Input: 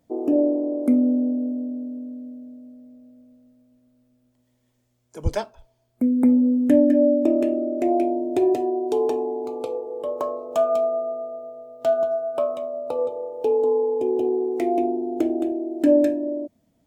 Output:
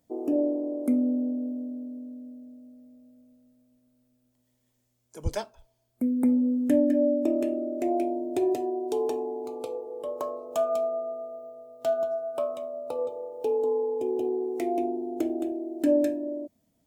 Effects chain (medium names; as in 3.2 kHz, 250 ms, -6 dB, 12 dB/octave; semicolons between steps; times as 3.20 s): treble shelf 5 kHz +8.5 dB; trim -6 dB